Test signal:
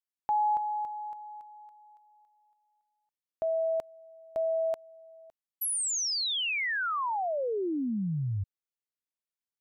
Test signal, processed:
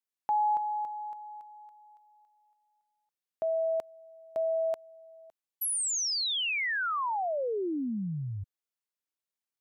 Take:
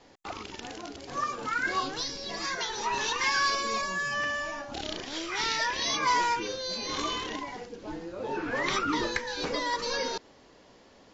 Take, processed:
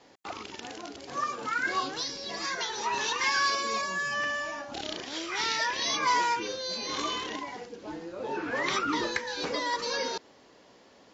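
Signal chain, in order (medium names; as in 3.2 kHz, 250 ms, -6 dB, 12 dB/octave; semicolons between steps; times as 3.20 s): high-pass 160 Hz 6 dB/octave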